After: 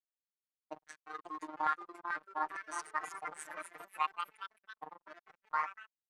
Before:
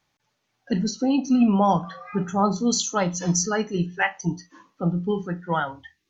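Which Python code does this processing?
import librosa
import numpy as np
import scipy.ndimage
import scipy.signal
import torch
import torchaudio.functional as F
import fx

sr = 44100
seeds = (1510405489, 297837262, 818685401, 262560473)

y = fx.pitch_heads(x, sr, semitones=6.0)
y = fx.tilt_eq(y, sr, slope=4.5)
y = fx.chopper(y, sr, hz=5.6, depth_pct=65, duty_pct=70)
y = fx.high_shelf(y, sr, hz=3200.0, db=-8.0)
y = y + 10.0 ** (-19.5 / 20.0) * np.pad(y, (int(101 * sr / 1000.0), 0))[:len(y)]
y = fx.backlash(y, sr, play_db=-20.5)
y = fx.filter_lfo_bandpass(y, sr, shape='saw_down', hz=1.2, low_hz=800.0, high_hz=1800.0, q=3.9)
y = fx.robotise(y, sr, hz=154.0)
y = fx.echo_pitch(y, sr, ms=620, semitones=2, count=3, db_per_echo=-6.0)
y = y * 10.0 ** (2.5 / 20.0)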